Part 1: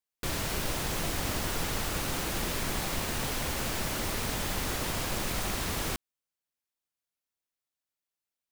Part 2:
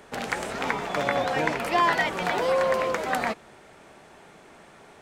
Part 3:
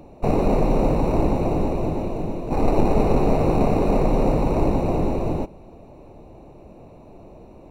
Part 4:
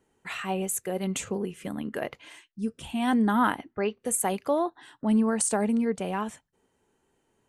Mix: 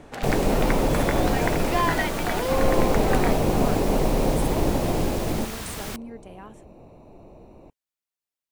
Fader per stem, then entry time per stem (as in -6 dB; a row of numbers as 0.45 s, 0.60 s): -2.0 dB, -2.5 dB, -3.0 dB, -13.5 dB; 0.00 s, 0.00 s, 0.00 s, 0.25 s